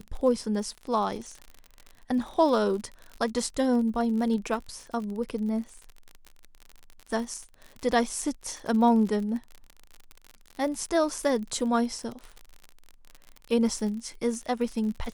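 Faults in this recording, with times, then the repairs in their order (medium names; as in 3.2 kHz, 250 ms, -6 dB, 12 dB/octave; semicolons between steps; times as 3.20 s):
crackle 50 per s -34 dBFS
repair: de-click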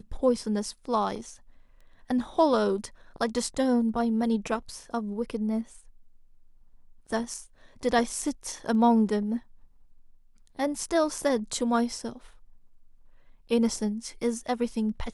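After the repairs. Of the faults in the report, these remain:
nothing left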